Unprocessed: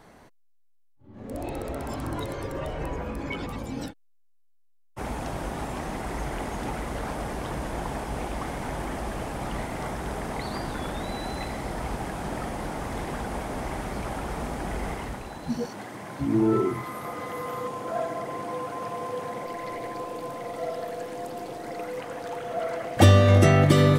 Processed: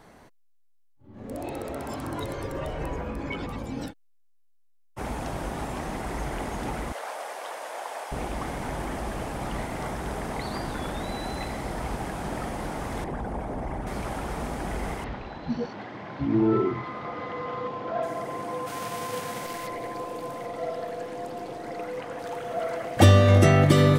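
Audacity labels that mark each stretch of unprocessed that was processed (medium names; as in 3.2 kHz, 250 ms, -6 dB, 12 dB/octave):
1.340000	2.220000	high-pass 120 Hz 6 dB/octave
3.010000	3.870000	treble shelf 6 kHz -6 dB
6.920000	8.120000	Chebyshev high-pass 560 Hz, order 3
13.040000	13.870000	resonances exaggerated exponent 1.5
15.040000	18.030000	low-pass 4.4 kHz 24 dB/octave
18.660000	19.660000	formants flattened exponent 0.6
20.460000	22.190000	treble shelf 7.5 kHz -8.5 dB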